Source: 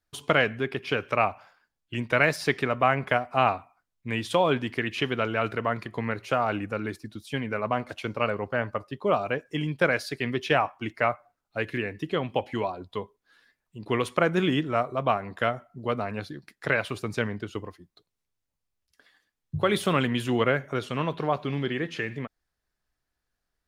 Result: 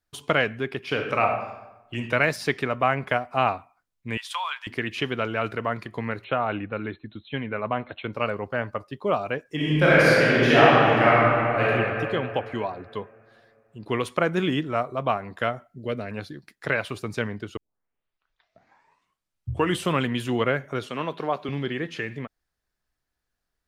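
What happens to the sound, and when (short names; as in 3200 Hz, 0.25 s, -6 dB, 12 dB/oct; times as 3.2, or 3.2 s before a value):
0.86–1.98 reverb throw, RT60 1 s, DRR 2.5 dB
4.17–4.67 Chebyshev high-pass 960 Hz, order 4
6.24–8.13 brick-wall FIR low-pass 4200 Hz
9.55–11.62 reverb throw, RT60 2.9 s, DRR -9.5 dB
12.39–13.84 high shelf 6900 Hz -5.5 dB
15.68–16.11 band shelf 960 Hz -10.5 dB 1 oct
17.57 tape start 2.45 s
20.87–21.49 HPF 210 Hz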